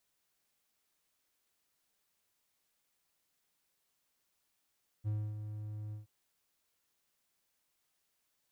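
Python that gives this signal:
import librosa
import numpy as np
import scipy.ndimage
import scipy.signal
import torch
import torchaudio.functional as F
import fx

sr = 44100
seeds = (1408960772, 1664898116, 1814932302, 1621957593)

y = fx.adsr_tone(sr, wave='triangle', hz=106.0, attack_ms=35.0, decay_ms=266.0, sustain_db=-8.5, held_s=0.89, release_ms=134.0, level_db=-29.0)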